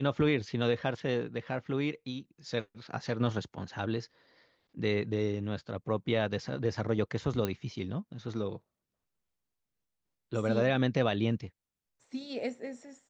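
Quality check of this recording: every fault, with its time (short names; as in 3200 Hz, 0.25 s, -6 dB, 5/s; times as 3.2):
7.45 pop -17 dBFS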